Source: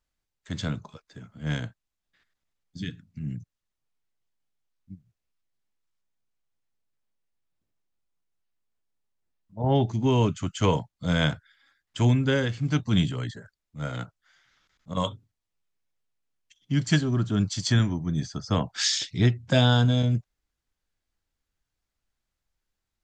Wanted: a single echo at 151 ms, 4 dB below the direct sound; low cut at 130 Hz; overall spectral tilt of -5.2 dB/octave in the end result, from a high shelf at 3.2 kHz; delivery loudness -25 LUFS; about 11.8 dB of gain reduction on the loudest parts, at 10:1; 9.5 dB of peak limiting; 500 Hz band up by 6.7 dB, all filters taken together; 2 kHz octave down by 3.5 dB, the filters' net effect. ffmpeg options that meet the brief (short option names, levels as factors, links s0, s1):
-af "highpass=130,equalizer=f=500:t=o:g=8.5,equalizer=f=2000:t=o:g=-7,highshelf=f=3200:g=4,acompressor=threshold=0.0562:ratio=10,alimiter=limit=0.0631:level=0:latency=1,aecho=1:1:151:0.631,volume=2.82"